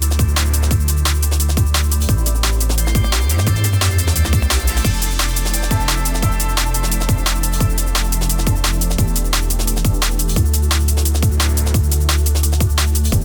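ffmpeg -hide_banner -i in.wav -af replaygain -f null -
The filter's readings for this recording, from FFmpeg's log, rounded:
track_gain = +0.7 dB
track_peak = 0.348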